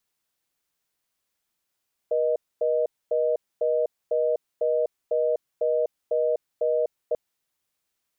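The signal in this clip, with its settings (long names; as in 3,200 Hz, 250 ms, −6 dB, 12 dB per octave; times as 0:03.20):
call progress tone reorder tone, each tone −23 dBFS 5.04 s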